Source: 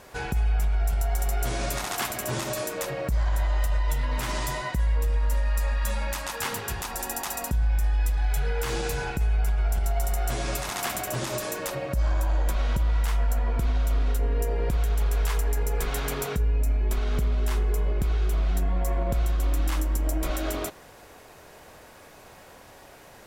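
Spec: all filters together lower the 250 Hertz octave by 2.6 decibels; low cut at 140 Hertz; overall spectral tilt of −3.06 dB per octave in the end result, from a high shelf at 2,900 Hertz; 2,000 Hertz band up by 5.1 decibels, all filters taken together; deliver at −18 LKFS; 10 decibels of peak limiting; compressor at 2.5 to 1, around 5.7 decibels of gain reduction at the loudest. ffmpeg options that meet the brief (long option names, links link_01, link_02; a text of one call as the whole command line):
ffmpeg -i in.wav -af "highpass=140,equalizer=frequency=250:width_type=o:gain=-3,equalizer=frequency=2000:width_type=o:gain=4.5,highshelf=frequency=2900:gain=5.5,acompressor=threshold=-32dB:ratio=2.5,volume=18.5dB,alimiter=limit=-7.5dB:level=0:latency=1" out.wav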